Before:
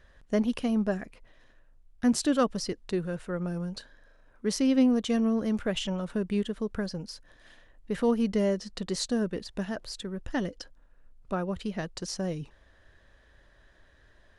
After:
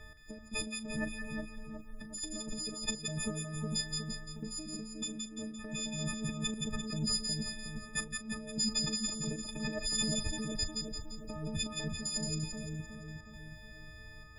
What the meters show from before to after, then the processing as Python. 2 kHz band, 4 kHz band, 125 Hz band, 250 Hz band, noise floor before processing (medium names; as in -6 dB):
-1.5 dB, +3.0 dB, -2.5 dB, -11.0 dB, -60 dBFS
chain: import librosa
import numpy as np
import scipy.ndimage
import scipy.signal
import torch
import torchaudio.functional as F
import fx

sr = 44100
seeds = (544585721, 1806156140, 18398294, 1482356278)

y = fx.freq_snap(x, sr, grid_st=6)
y = fx.low_shelf(y, sr, hz=350.0, db=10.5)
y = fx.over_compress(y, sr, threshold_db=-32.0, ratio=-1.0)
y = fx.step_gate(y, sr, bpm=117, pattern='x.x.xxxxxx', floor_db=-12.0, edge_ms=4.5)
y = fx.dynamic_eq(y, sr, hz=7000.0, q=2.8, threshold_db=-48.0, ratio=4.0, max_db=7)
y = fx.doubler(y, sr, ms=38.0, db=-13)
y = fx.echo_split(y, sr, split_hz=1300.0, low_ms=364, high_ms=172, feedback_pct=52, wet_db=-3.5)
y = y * librosa.db_to_amplitude(-8.5)